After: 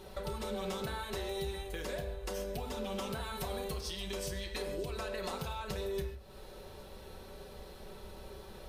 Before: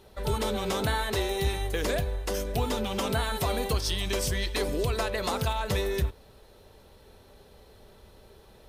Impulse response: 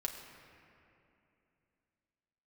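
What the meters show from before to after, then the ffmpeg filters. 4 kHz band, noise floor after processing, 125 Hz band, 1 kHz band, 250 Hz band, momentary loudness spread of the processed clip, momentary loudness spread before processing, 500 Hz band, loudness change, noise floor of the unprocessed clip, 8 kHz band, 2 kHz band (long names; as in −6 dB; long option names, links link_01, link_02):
−10.0 dB, −51 dBFS, −12.0 dB, −10.0 dB, −9.0 dB, 13 LU, 2 LU, −8.0 dB, −10.0 dB, −55 dBFS, −10.5 dB, −10.5 dB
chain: -filter_complex "[0:a]acompressor=threshold=-41dB:ratio=8[link_01];[1:a]atrim=start_sample=2205,afade=type=out:start_time=0.21:duration=0.01,atrim=end_sample=9702[link_02];[link_01][link_02]afir=irnorm=-1:irlink=0,volume=4.5dB"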